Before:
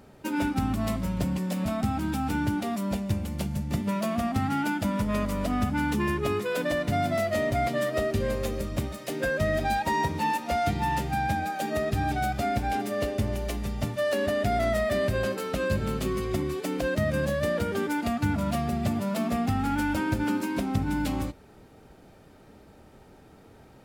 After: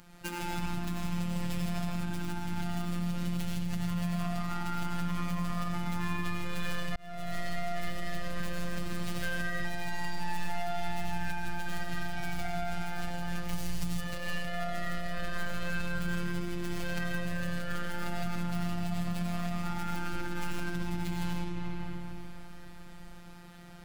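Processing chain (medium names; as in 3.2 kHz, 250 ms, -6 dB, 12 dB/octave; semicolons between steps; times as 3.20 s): tracing distortion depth 0.093 ms; algorithmic reverb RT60 2.7 s, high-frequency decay 0.7×, pre-delay 50 ms, DRR -4.5 dB; peak limiter -17 dBFS, peak gain reduction 10.5 dB; 13.53–14.01 s: tone controls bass +7 dB, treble +10 dB; compression, threshold -27 dBFS, peak gain reduction 10.5 dB; robot voice 174 Hz; peaking EQ 440 Hz -14.5 dB 1.6 oct; 6.96–7.38 s: fade in; trim +4 dB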